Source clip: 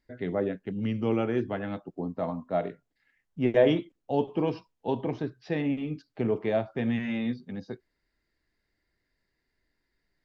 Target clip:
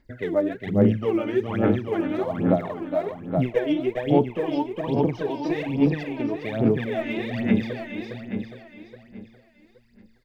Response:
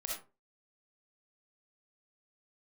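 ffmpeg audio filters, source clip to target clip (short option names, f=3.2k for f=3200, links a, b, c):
-af "aecho=1:1:410|820|1230|1640|2050|2460|2870:0.668|0.334|0.167|0.0835|0.0418|0.0209|0.0104,acompressor=threshold=-28dB:ratio=6,aphaser=in_gain=1:out_gain=1:delay=3.4:decay=0.77:speed=1.2:type=sinusoidal,volume=3.5dB"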